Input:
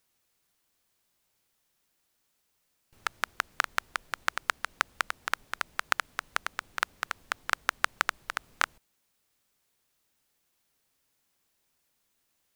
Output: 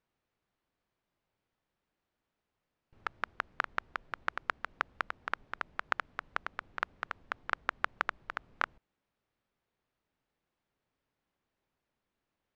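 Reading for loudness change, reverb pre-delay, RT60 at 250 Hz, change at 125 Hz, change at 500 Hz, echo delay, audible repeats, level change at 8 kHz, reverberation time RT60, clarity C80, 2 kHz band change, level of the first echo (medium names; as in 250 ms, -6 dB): -5.5 dB, no reverb, no reverb, -0.5 dB, -2.0 dB, no echo, no echo, under -20 dB, no reverb, no reverb, -5.5 dB, no echo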